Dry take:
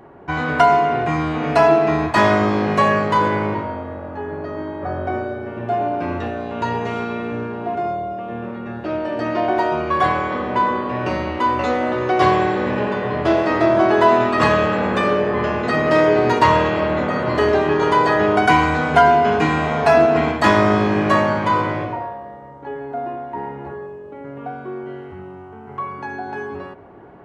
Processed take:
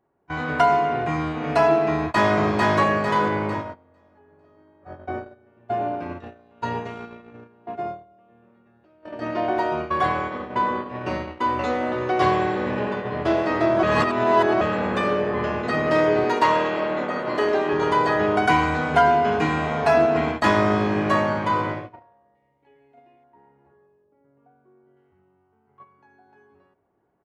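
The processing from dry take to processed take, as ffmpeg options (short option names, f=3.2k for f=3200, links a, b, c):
-filter_complex "[0:a]asplit=2[a][b];[b]afade=t=in:st=1.92:d=0.01,afade=t=out:st=2.38:d=0.01,aecho=0:1:450|900|1350|1800|2250|2700:0.794328|0.357448|0.160851|0.0723832|0.0325724|0.0146576[c];[a][c]amix=inputs=2:normalize=0,asettb=1/sr,asplit=3[d][e][f];[d]atrim=end=8.614[g];[e]atrim=start=8.61:end=9.03,asetpts=PTS-STARTPTS,afade=t=in:d=0.004:c=qsin,afade=t=out:st=0.416:d=0.004:c=qsin,acompressor=threshold=-27dB:ratio=4:attack=3.2:release=140:knee=1:detection=peak[h];[f]atrim=start=9.026[i];[g][h]acrossfade=d=0.004:c1=hsin:c2=qsin[j];[j][i]acrossfade=d=0.004:c1=qsin:c2=hsin,asettb=1/sr,asplit=3[k][l][m];[k]atrim=end=16.244[n];[l]atrim=start=16.24:end=17.73,asetpts=PTS-STARTPTS,afade=t=in:d=0.004:c=qsin,afade=t=out:st=1.486:d=0.004:c=qsin,highpass=230[o];[m]atrim=start=17.726[p];[n][o]acrossfade=d=0.004:c1=hsin:c2=qsin[q];[q][p]acrossfade=d=0.004:c1=qsin:c2=hsin,asettb=1/sr,asplit=3[r][s][t];[r]atrim=end=22.354[u];[s]atrim=start=22.35:end=23.24,asetpts=PTS-STARTPTS,afade=t=in:d=0.004:c=qsin,afade=t=out:st=0.886:d=0.004:c=qsin,highshelf=f=1.8k:t=q:w=3:g=7[v];[t]atrim=start=23.236[w];[u][v]acrossfade=d=0.004:c1=hsin:c2=qsin[x];[x][w]acrossfade=d=0.004:c1=qsin:c2=hsin,asettb=1/sr,asplit=3[y][z][aa];[y]atrim=end=24.044[ab];[z]atrim=start=24.04:end=24.97,asetpts=PTS-STARTPTS,afade=t=in:d=0.004:c=qsin,afade=t=out:st=0.926:d=0.004:c=qsin,lowpass=f=1.2k:p=1[ac];[aa]atrim=start=24.966[ad];[ab][ac]acrossfade=d=0.004:c1=hsin:c2=qsin[ae];[ae][ad]acrossfade=d=0.004:c1=qsin:c2=hsin,asplit=3[af][ag][ah];[af]atrim=end=13.832[ai];[ag]atrim=start=13.828:end=14.612,asetpts=PTS-STARTPTS,areverse[aj];[ah]atrim=start=14.608[ak];[ai][aj]acrossfade=d=0.004:c1=hsin:c2=hsin[al];[al][ak]acrossfade=d=0.004:c1=hsin:c2=hsin,agate=range=-23dB:threshold=-22dB:ratio=16:detection=peak,volume=-4.5dB"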